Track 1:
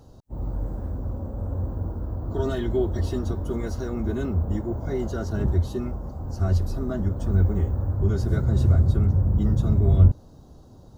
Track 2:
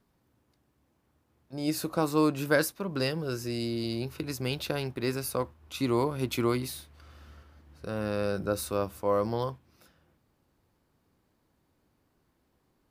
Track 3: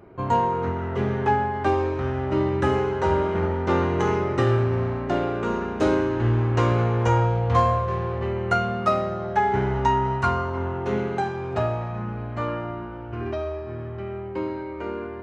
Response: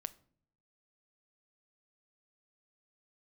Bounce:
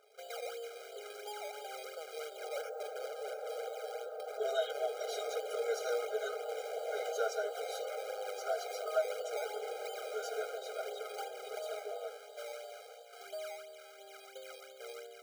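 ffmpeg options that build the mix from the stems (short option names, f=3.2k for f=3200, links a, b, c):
-filter_complex "[0:a]aecho=1:1:6.4:0.93,acompressor=threshold=-22dB:ratio=6,adelay=2050,volume=0dB[a];[1:a]highshelf=f=11k:g=-7,volume=-7dB[b];[2:a]equalizer=f=1.4k:w=1.4:g=-11.5,volume=-9.5dB,asplit=3[c][d][e];[c]atrim=end=2.49,asetpts=PTS-STARTPTS,afade=t=out:st=2.486:d=0.004:c=hsin[f];[d]atrim=start=2.49:end=4.78,asetpts=PTS-STARTPTS,volume=0[g];[e]atrim=start=4.78,asetpts=PTS-STARTPTS,afade=t=in:d=0.004:c=hsin[h];[f][g][h]concat=n=3:v=0:a=1[i];[b][i]amix=inputs=2:normalize=0,acrusher=samples=21:mix=1:aa=0.000001:lfo=1:lforange=21:lforate=2.9,alimiter=level_in=6.5dB:limit=-24dB:level=0:latency=1:release=156,volume=-6.5dB,volume=0dB[j];[a][j]amix=inputs=2:normalize=0,afftfilt=real='re*eq(mod(floor(b*sr/1024/410),2),1)':imag='im*eq(mod(floor(b*sr/1024/410),2),1)':win_size=1024:overlap=0.75"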